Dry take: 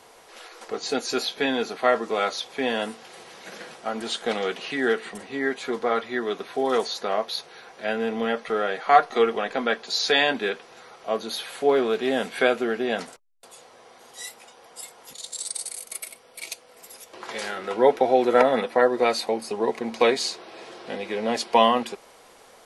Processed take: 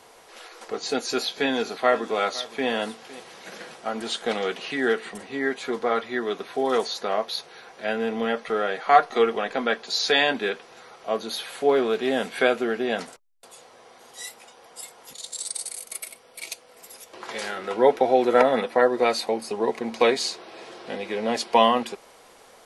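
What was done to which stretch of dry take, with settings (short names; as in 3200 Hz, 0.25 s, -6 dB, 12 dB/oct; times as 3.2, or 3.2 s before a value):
0.83–3.2 echo 0.509 s -18 dB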